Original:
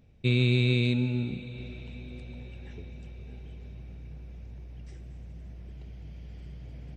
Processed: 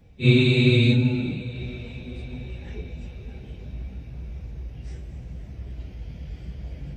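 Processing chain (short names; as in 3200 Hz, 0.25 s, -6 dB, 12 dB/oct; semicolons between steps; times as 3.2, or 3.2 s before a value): phase scrambler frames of 0.1 s; gain +7 dB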